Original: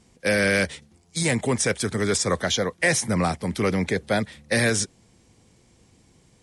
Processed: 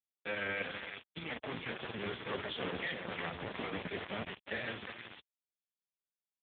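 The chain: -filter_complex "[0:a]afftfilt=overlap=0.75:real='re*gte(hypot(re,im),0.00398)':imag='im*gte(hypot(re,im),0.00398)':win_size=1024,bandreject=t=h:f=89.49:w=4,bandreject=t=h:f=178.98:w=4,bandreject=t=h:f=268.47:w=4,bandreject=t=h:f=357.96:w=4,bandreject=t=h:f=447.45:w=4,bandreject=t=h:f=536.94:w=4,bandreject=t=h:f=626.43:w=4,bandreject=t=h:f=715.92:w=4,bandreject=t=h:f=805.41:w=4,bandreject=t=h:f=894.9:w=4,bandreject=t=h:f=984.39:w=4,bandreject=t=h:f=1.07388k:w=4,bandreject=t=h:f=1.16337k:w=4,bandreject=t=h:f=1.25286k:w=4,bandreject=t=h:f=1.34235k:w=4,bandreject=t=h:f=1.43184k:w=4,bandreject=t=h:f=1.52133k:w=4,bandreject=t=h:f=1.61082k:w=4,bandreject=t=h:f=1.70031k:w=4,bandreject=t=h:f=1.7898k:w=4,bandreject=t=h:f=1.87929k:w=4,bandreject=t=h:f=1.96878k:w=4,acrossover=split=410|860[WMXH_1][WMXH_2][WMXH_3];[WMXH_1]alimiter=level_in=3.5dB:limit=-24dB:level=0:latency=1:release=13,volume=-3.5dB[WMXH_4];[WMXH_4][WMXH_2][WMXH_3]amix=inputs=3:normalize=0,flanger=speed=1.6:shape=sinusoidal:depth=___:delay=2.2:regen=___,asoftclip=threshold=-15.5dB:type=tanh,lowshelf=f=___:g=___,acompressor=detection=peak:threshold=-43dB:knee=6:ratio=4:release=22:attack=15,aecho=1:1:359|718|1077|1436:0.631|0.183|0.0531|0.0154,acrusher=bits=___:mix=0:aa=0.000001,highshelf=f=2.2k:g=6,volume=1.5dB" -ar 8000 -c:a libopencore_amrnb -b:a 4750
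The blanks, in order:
5.3, -70, 180, 5, 5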